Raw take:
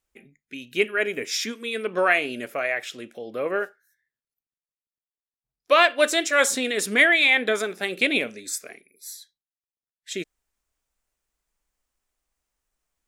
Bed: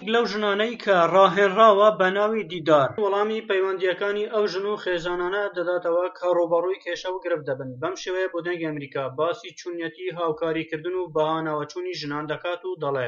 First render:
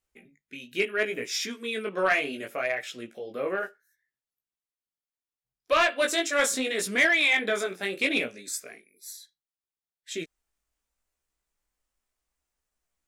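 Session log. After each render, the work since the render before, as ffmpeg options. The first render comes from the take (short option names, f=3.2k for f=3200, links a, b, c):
-af "flanger=delay=15.5:depth=5.7:speed=0.71,asoftclip=type=tanh:threshold=-13.5dB"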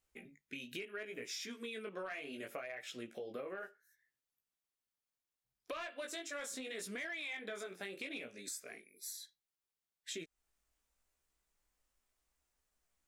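-af "alimiter=level_in=1dB:limit=-24dB:level=0:latency=1:release=498,volume=-1dB,acompressor=threshold=-43dB:ratio=4"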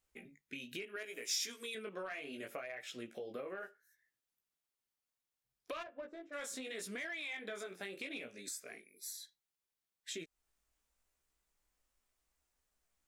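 -filter_complex "[0:a]asettb=1/sr,asplit=3[a][b][c];[a]atrim=end=0.964[d];[b]atrim=start=0.96:end=1.75,asetpts=PTS-STARTPTS,afade=t=in:d=0.004:c=qsin,afade=t=out:st=0.786:d=0.004:c=qsin,bass=f=250:g=-14,treble=f=4k:g=11[e];[c]atrim=start=1.746[f];[d][e]acrossfade=d=0.004:c1=hsin:c2=qsin[g];[g][f]acrossfade=d=0.004:c1=qsin:c2=hsin,asplit=3[h][i][j];[h]afade=t=out:st=5.82:d=0.02[k];[i]adynamicsmooth=sensitivity=3:basefreq=700,afade=t=in:st=5.82:d=0.02,afade=t=out:st=6.32:d=0.02[l];[j]afade=t=in:st=6.32:d=0.02[m];[k][l][m]amix=inputs=3:normalize=0"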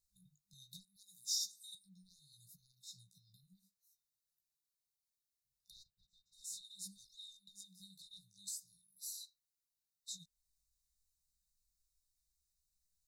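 -af "afftfilt=real='re*(1-between(b*sr/4096,200,3600))':imag='im*(1-between(b*sr/4096,200,3600))':win_size=4096:overlap=0.75,equalizer=f=190:w=0.34:g=-3.5"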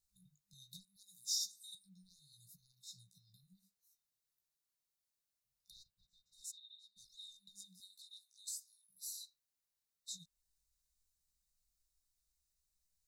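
-filter_complex "[0:a]asplit=3[a][b][c];[a]afade=t=out:st=6.5:d=0.02[d];[b]bandpass=f=3.7k:t=q:w=15,afade=t=in:st=6.5:d=0.02,afade=t=out:st=6.96:d=0.02[e];[c]afade=t=in:st=6.96:d=0.02[f];[d][e][f]amix=inputs=3:normalize=0,asettb=1/sr,asplit=3[g][h][i];[g]atrim=end=7.804[j];[h]atrim=start=7.8:end=8.89,asetpts=PTS-STARTPTS,afade=t=in:d=0.004:c=qsin,afade=t=out:st=1.086:d=0.004:c=qsin,highpass=f=580:w=0.5412,highpass=f=580:w=1.3066[k];[i]atrim=start=8.886[l];[j][k]acrossfade=d=0.004:c1=hsin:c2=qsin[m];[m][l]acrossfade=d=0.004:c1=qsin:c2=hsin"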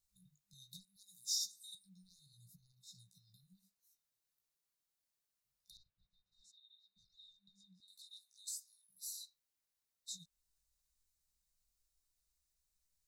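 -filter_complex "[0:a]asettb=1/sr,asplit=3[a][b][c];[a]atrim=end=2.264[d];[b]atrim=start=2.26:end=2.95,asetpts=PTS-STARTPTS,afade=t=in:d=0.004:c=qsin,afade=t=out:st=0.686:d=0.004:c=qsin,tiltshelf=f=970:g=5[e];[c]atrim=start=2.946[f];[d][e]acrossfade=d=0.004:c1=hsin:c2=qsin[g];[g][f]acrossfade=d=0.004:c1=qsin:c2=hsin,asettb=1/sr,asplit=3[h][i][j];[h]atrim=end=5.774[k];[i]atrim=start=5.77:end=7.88,asetpts=PTS-STARTPTS,afade=t=in:d=0.004:c=qsin,afade=t=out:st=2.106:d=0.004:c=qsin,lowpass=2.5k[l];[j]atrim=start=7.876[m];[k][l]acrossfade=d=0.004:c1=hsin:c2=qsin[n];[n][m]acrossfade=d=0.004:c1=qsin:c2=hsin"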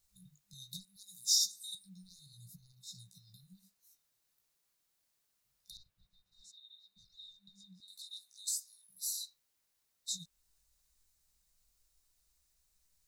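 -af "volume=8.5dB"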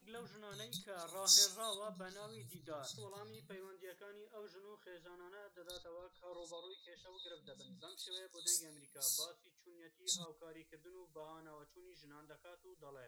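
-filter_complex "[1:a]volume=-31dB[a];[0:a][a]amix=inputs=2:normalize=0"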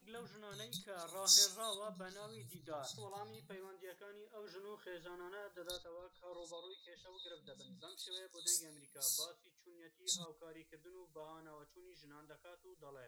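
-filter_complex "[0:a]asettb=1/sr,asplit=3[a][b][c];[a]atrim=end=2.734[d];[b]atrim=start=2.73:end=3.96,asetpts=PTS-STARTPTS,afade=t=in:d=0.004:c=qsin,afade=t=out:st=1.226:d=0.004:c=qsin,equalizer=f=790:w=5.6:g=13[e];[c]atrim=start=3.956[f];[d][e]acrossfade=d=0.004:c1=hsin:c2=qsin[g];[g][f]acrossfade=d=0.004:c1=qsin:c2=hsin,asettb=1/sr,asplit=3[h][i][j];[h]atrim=end=4.474[k];[i]atrim=start=4.47:end=5.76,asetpts=PTS-STARTPTS,afade=t=in:d=0.004:c=qsin,afade=t=out:st=1.286:d=0.004:c=qsin,acontrast=35[l];[j]atrim=start=5.756[m];[k][l]acrossfade=d=0.004:c1=hsin:c2=qsin[n];[n][m]acrossfade=d=0.004:c1=qsin:c2=hsin"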